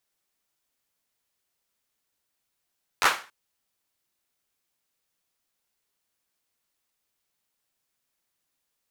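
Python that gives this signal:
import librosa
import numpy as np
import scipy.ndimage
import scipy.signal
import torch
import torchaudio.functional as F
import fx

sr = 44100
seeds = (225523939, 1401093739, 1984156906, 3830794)

y = fx.drum_clap(sr, seeds[0], length_s=0.28, bursts=4, spacing_ms=11, hz=1300.0, decay_s=0.35)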